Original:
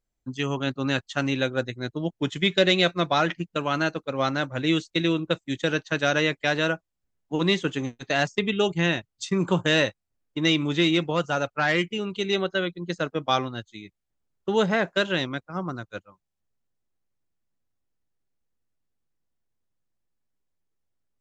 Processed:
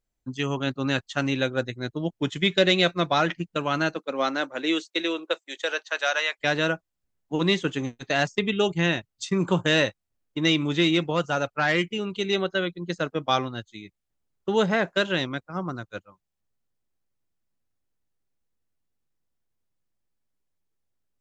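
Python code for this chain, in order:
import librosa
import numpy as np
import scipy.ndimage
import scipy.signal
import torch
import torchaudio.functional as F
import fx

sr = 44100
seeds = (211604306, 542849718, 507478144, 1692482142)

y = fx.highpass(x, sr, hz=fx.line((3.94, 200.0), (6.38, 710.0)), slope=24, at=(3.94, 6.38), fade=0.02)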